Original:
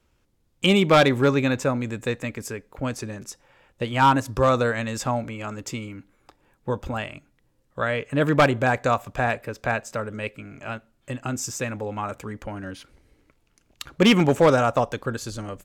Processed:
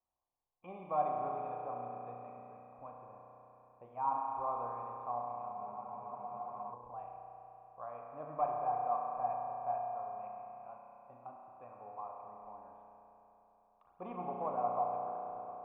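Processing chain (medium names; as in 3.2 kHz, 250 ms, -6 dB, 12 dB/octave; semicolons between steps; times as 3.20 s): cascade formant filter a; spring tank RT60 3.7 s, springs 33 ms, chirp 75 ms, DRR -1 dB; spectral freeze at 5.55 s, 1.18 s; trim -7 dB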